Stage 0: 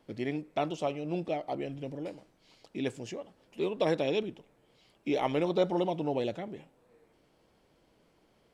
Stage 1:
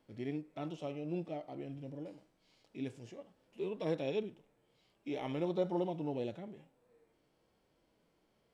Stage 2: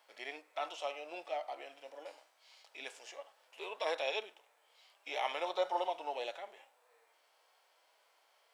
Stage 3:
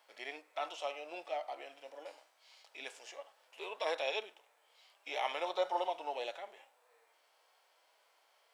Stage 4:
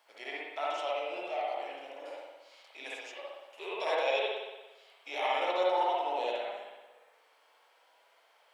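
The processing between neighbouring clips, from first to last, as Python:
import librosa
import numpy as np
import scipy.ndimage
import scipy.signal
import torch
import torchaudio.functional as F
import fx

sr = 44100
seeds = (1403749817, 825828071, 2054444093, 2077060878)

y1 = fx.hpss(x, sr, part='percussive', gain_db=-12)
y1 = y1 * 10.0 ** (-4.0 / 20.0)
y2 = scipy.signal.sosfilt(scipy.signal.butter(4, 700.0, 'highpass', fs=sr, output='sos'), y1)
y2 = y2 * 10.0 ** (10.0 / 20.0)
y3 = y2
y4 = fx.rev_spring(y3, sr, rt60_s=1.1, pass_ms=(58,), chirp_ms=35, drr_db=-5.0)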